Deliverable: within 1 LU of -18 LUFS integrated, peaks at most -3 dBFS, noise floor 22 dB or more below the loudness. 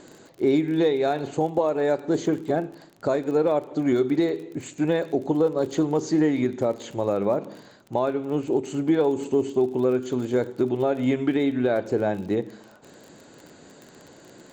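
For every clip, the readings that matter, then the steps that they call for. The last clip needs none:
tick rate 32 per s; loudness -24.5 LUFS; peak level -10.5 dBFS; loudness target -18.0 LUFS
-> de-click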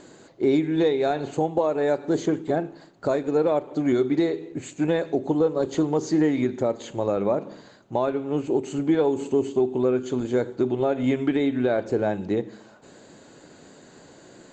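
tick rate 0 per s; loudness -24.5 LUFS; peak level -10.5 dBFS; loudness target -18.0 LUFS
-> trim +6.5 dB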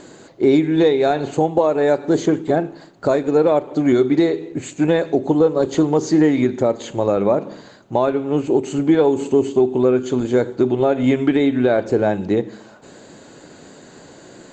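loudness -18.0 LUFS; peak level -4.0 dBFS; noise floor -44 dBFS

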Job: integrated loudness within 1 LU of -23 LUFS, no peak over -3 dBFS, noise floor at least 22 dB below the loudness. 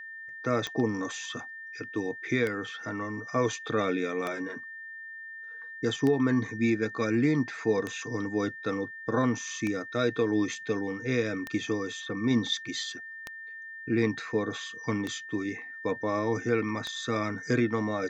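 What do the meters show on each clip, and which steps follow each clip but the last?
clicks found 10; steady tone 1.8 kHz; tone level -40 dBFS; loudness -30.0 LUFS; peak level -14.5 dBFS; loudness target -23.0 LUFS
-> de-click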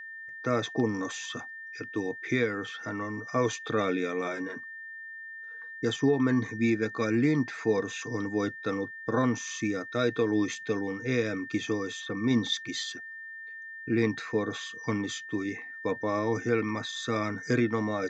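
clicks found 0; steady tone 1.8 kHz; tone level -40 dBFS
-> band-stop 1.8 kHz, Q 30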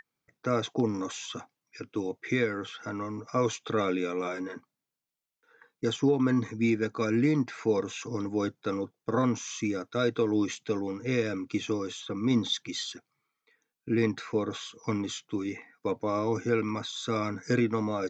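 steady tone not found; loudness -30.5 LUFS; peak level -14.5 dBFS; loudness target -23.0 LUFS
-> trim +7.5 dB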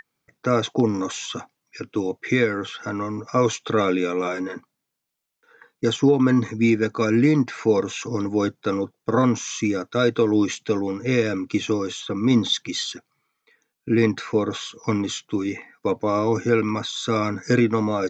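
loudness -23.0 LUFS; peak level -7.0 dBFS; noise floor -79 dBFS

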